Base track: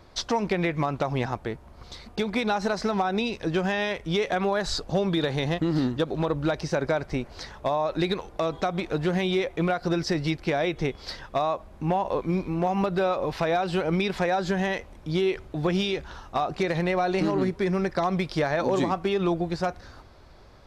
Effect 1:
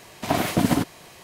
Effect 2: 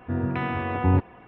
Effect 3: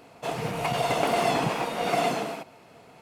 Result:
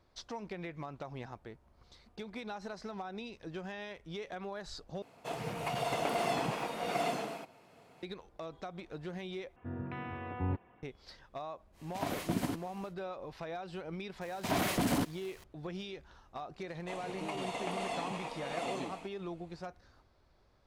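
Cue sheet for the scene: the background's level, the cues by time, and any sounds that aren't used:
base track -17 dB
5.02 replace with 3 -8.5 dB
9.56 replace with 2 -14 dB
11.72 add 1 -14 dB, fades 0.10 s
14.21 add 1 -16.5 dB + sample leveller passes 3
16.64 add 3 -10.5 dB + speaker cabinet 240–9900 Hz, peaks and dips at 380 Hz -8 dB, 670 Hz -4 dB, 1500 Hz -10 dB, 5100 Hz -6 dB

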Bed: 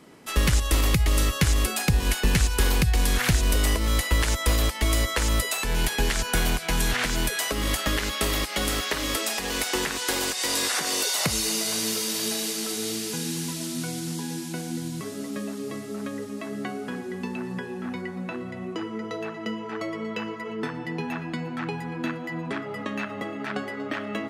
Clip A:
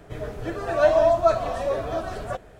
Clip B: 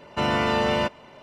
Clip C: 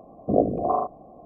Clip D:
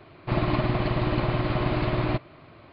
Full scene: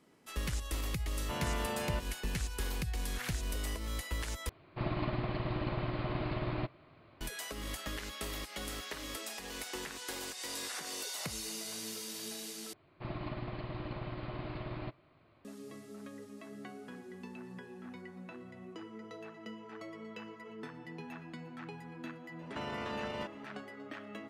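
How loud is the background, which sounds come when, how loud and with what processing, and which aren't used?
bed -15 dB
1.12 add B -15 dB
4.49 replace with D -10.5 dB
12.73 replace with D -16 dB
22.39 add B -10 dB + limiter -21.5 dBFS
not used: A, C

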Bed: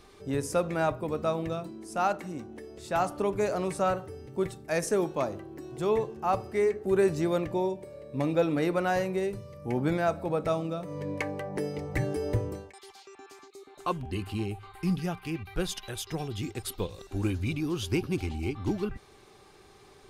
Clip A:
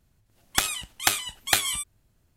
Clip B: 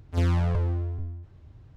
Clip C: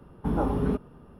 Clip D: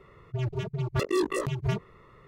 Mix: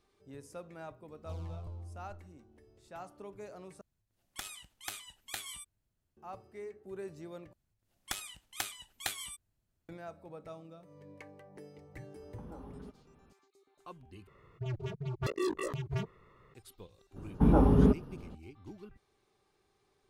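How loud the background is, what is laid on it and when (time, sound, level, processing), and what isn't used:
bed -19 dB
1.12 add B -17.5 dB + fixed phaser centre 740 Hz, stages 4
3.81 replace with A -16.5 dB + limiter -8.5 dBFS
7.53 replace with A -15 dB
12.14 add C -13 dB + compressor, threshold -31 dBFS
14.27 replace with D -7 dB
17.16 add C -2 dB + low shelf 470 Hz +6.5 dB

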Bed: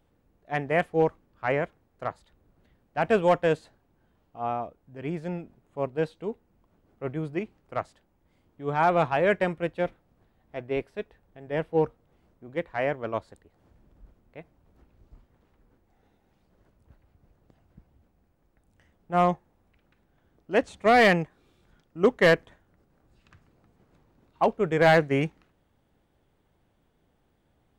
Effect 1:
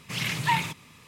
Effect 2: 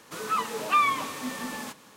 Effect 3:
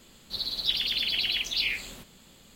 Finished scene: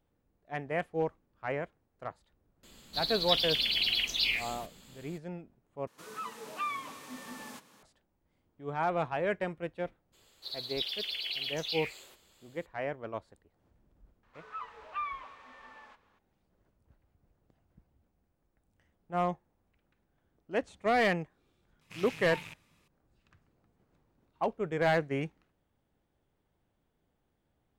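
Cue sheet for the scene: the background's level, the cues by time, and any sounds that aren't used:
bed -8.5 dB
2.63 add 3 -1.5 dB
5.87 replace with 2 -13 dB + recorder AGC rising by 5.4 dB/s
10.12 add 3 -8.5 dB, fades 0.02 s + steep high-pass 340 Hz
14.23 add 2 -13 dB + BPF 670–2200 Hz
21.81 add 1 -17 dB + rattling part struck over -39 dBFS, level -18 dBFS

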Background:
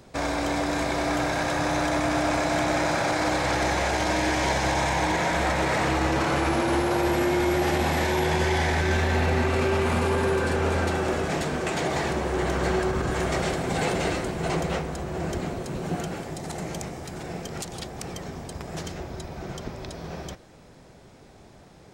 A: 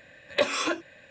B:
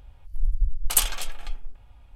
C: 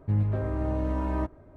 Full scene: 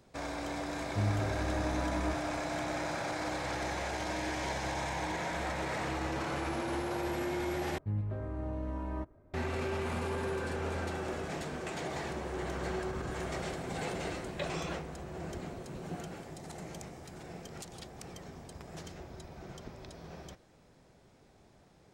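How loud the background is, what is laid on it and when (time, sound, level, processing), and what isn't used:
background -11.5 dB
0.88 add C -6.5 dB
7.78 replace with C -9 dB
14.01 add A -15 dB
not used: B

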